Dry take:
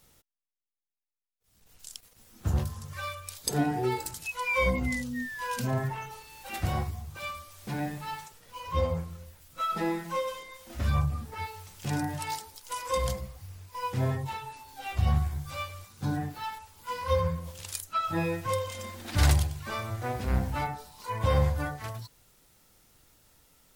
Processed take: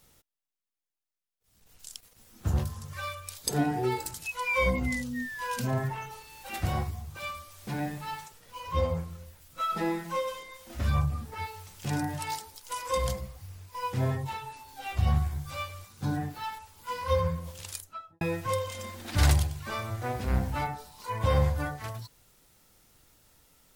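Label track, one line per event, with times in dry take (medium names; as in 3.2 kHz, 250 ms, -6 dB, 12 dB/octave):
17.630000	18.210000	studio fade out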